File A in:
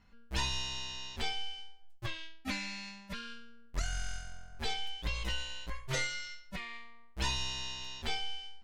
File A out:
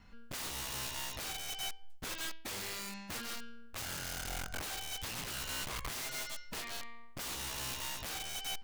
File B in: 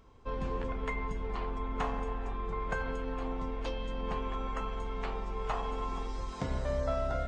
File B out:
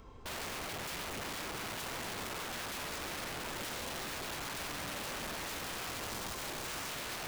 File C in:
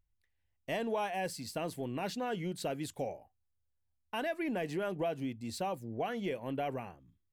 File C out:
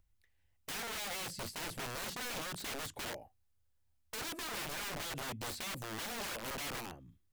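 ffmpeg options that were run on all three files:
ffmpeg -i in.wav -filter_complex "[0:a]acrossover=split=670|2000|6000[link_01][link_02][link_03][link_04];[link_01]acompressor=threshold=-38dB:ratio=4[link_05];[link_02]acompressor=threshold=-53dB:ratio=4[link_06];[link_03]acompressor=threshold=-55dB:ratio=4[link_07];[link_04]acompressor=threshold=-58dB:ratio=4[link_08];[link_05][link_06][link_07][link_08]amix=inputs=4:normalize=0,aeval=exprs='(mod(119*val(0)+1,2)-1)/119':channel_layout=same,volume=5.5dB" out.wav

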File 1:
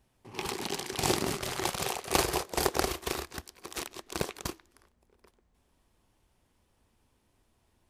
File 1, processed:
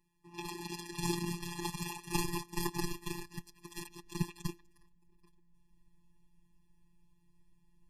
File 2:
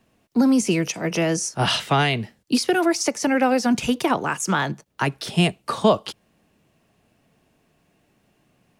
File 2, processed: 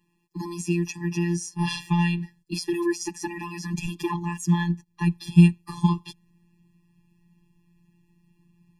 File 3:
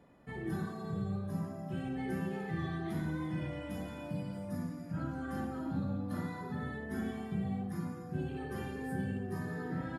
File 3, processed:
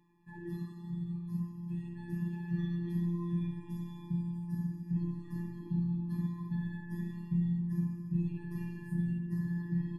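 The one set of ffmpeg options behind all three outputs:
ffmpeg -i in.wav -af "asubboost=boost=6:cutoff=180,afftfilt=real='hypot(re,im)*cos(PI*b)':imag='0':win_size=1024:overlap=0.75,afftfilt=real='re*eq(mod(floor(b*sr/1024/400),2),0)':imag='im*eq(mod(floor(b*sr/1024/400),2),0)':win_size=1024:overlap=0.75,volume=-2dB" out.wav

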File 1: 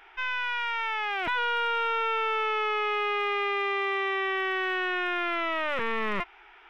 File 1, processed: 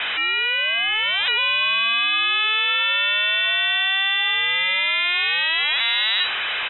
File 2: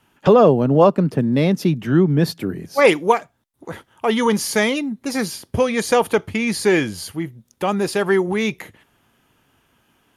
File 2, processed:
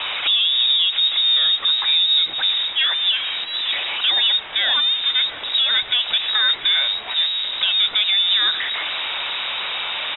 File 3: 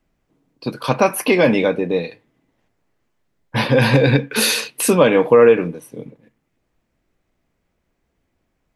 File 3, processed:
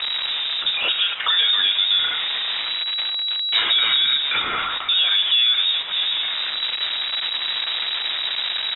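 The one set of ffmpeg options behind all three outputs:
ffmpeg -i in.wav -filter_complex "[0:a]aeval=exprs='val(0)+0.5*0.126*sgn(val(0))':channel_layout=same,asplit=2[link_01][link_02];[link_02]aecho=0:1:687:0.0708[link_03];[link_01][link_03]amix=inputs=2:normalize=0,alimiter=limit=-11dB:level=0:latency=1:release=110,lowpass=frequency=3300:width_type=q:width=0.5098,lowpass=frequency=3300:width_type=q:width=0.6013,lowpass=frequency=3300:width_type=q:width=0.9,lowpass=frequency=3300:width_type=q:width=2.563,afreqshift=-3900,lowshelf=frequency=220:gain=-9,bandreject=frequency=132.9:width_type=h:width=4,bandreject=frequency=265.8:width_type=h:width=4,bandreject=frequency=398.7:width_type=h:width=4,bandreject=frequency=531.6:width_type=h:width=4,bandreject=frequency=664.5:width_type=h:width=4,bandreject=frequency=797.4:width_type=h:width=4,bandreject=frequency=930.3:width_type=h:width=4,bandreject=frequency=1063.2:width_type=h:width=4,bandreject=frequency=1196.1:width_type=h:width=4,bandreject=frequency=1329:width_type=h:width=4,acrossover=split=110|2700[link_04][link_05][link_06];[link_04]acontrast=51[link_07];[link_07][link_05][link_06]amix=inputs=3:normalize=0" out.wav

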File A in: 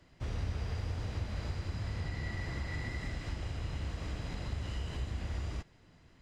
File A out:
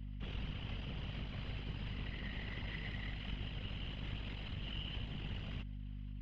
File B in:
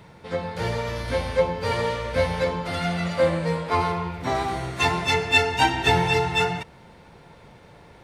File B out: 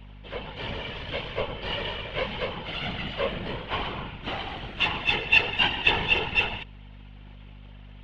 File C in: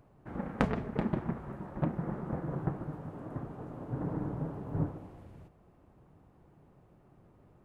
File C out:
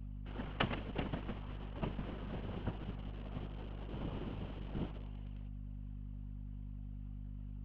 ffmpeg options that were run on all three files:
ffmpeg -i in.wav -filter_complex "[0:a]aeval=exprs='if(lt(val(0),0),0.251*val(0),val(0))':channel_layout=same,afftfilt=real='hypot(re,im)*cos(2*PI*random(0))':imag='hypot(re,im)*sin(2*PI*random(1))':win_size=512:overlap=0.75,acrossover=split=290|970[link_01][link_02][link_03];[link_01]aeval=exprs='val(0)*gte(abs(val(0)),0.002)':channel_layout=same[link_04];[link_04][link_02][link_03]amix=inputs=3:normalize=0,lowpass=frequency=3000:width_type=q:width=6.2,aeval=exprs='val(0)+0.00631*(sin(2*PI*50*n/s)+sin(2*PI*2*50*n/s)/2+sin(2*PI*3*50*n/s)/3+sin(2*PI*4*50*n/s)/4+sin(2*PI*5*50*n/s)/5)':channel_layout=same" out.wav

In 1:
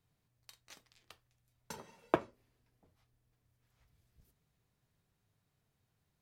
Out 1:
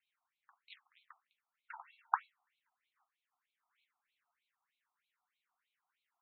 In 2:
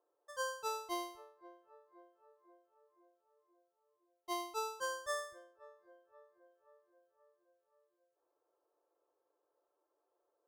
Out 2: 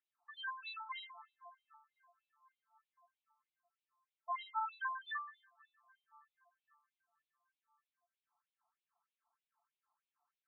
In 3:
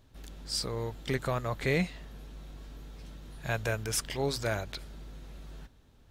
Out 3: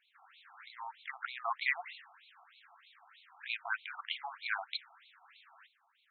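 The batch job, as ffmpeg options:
ffmpeg -i in.wav -af "afftfilt=real='re*between(b*sr/1024,940*pow(3100/940,0.5+0.5*sin(2*PI*3.2*pts/sr))/1.41,940*pow(3100/940,0.5+0.5*sin(2*PI*3.2*pts/sr))*1.41)':imag='im*between(b*sr/1024,940*pow(3100/940,0.5+0.5*sin(2*PI*3.2*pts/sr))/1.41,940*pow(3100/940,0.5+0.5*sin(2*PI*3.2*pts/sr))*1.41)':win_size=1024:overlap=0.75,volume=4.5dB" out.wav

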